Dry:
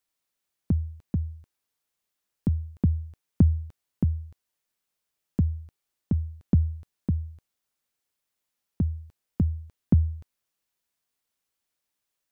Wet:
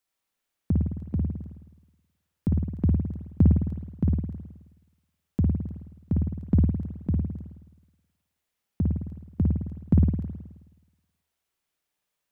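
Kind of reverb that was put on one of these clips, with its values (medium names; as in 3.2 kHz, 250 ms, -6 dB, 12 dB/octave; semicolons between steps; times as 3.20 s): spring tank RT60 1.1 s, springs 53 ms, chirp 70 ms, DRR -1.5 dB; trim -1 dB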